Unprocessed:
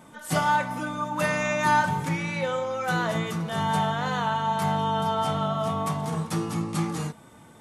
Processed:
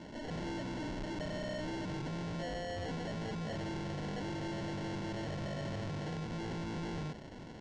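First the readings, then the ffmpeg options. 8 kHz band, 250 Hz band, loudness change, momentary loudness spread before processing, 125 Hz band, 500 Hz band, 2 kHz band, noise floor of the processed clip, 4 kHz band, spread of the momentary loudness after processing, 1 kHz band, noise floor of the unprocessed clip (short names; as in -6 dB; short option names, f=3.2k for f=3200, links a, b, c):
-16.0 dB, -9.0 dB, -13.5 dB, 6 LU, -10.5 dB, -12.0 dB, -17.0 dB, -48 dBFS, -11.5 dB, 1 LU, -20.5 dB, -50 dBFS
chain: -filter_complex "[0:a]acrossover=split=290|1200[a][b][c];[a]acompressor=threshold=-32dB:ratio=4[d];[b]acompressor=threshold=-36dB:ratio=4[e];[c]acompressor=threshold=-38dB:ratio=4[f];[d][e][f]amix=inputs=3:normalize=0,acrusher=samples=36:mix=1:aa=0.000001,asoftclip=type=hard:threshold=-37dB,bandreject=f=1.6k:w=18,asoftclip=type=tanh:threshold=-39.5dB,lowpass=f=6.4k:w=0.5412,lowpass=f=6.4k:w=1.3066,volume=3dB"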